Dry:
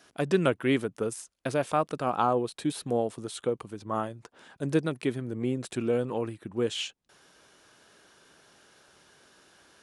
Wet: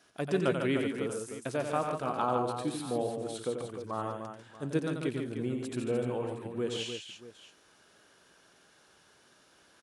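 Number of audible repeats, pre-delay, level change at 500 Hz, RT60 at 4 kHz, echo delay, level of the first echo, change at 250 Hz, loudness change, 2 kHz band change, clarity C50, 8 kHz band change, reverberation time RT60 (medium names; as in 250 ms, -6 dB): 4, no reverb, -3.5 dB, no reverb, 89 ms, -6.5 dB, -3.5 dB, -3.5 dB, -3.5 dB, no reverb, -3.5 dB, no reverb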